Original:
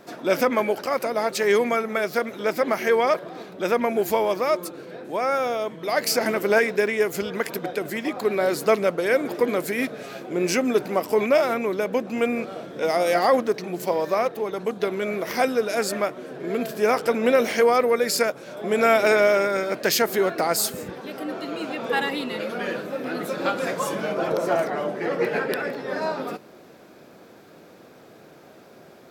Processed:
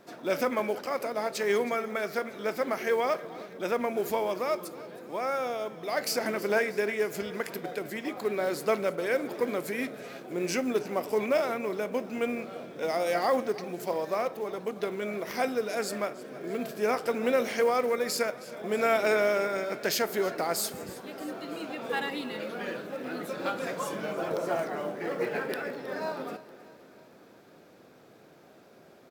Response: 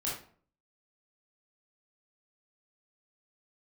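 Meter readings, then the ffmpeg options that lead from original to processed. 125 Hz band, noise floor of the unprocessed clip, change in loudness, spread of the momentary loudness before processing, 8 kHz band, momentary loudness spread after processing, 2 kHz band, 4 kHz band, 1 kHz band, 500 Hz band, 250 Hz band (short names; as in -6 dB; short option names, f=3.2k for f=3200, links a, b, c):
-7.0 dB, -49 dBFS, -7.0 dB, 10 LU, -7.5 dB, 10 LU, -7.0 dB, -7.0 dB, -7.0 dB, -7.0 dB, -7.0 dB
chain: -filter_complex "[0:a]acrusher=bits=7:mode=log:mix=0:aa=0.000001,aecho=1:1:318|636|954|1272|1590:0.119|0.0701|0.0414|0.0244|0.0144,asplit=2[a][b];[1:a]atrim=start_sample=2205,lowpass=11k[c];[b][c]afir=irnorm=-1:irlink=0,volume=-18dB[d];[a][d]amix=inputs=2:normalize=0,volume=-8dB"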